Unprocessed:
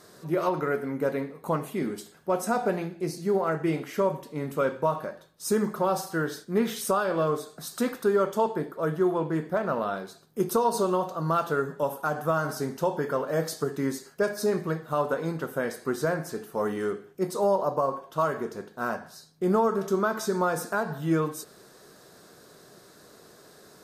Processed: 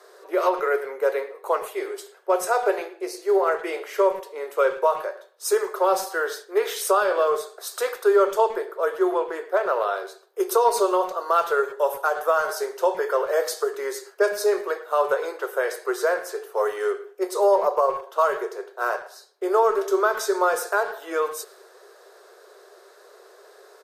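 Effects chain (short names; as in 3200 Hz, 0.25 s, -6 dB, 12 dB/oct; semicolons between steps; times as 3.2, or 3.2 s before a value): Chebyshev high-pass 380 Hz, order 6; speakerphone echo 0.11 s, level -16 dB; mismatched tape noise reduction decoder only; gain +6 dB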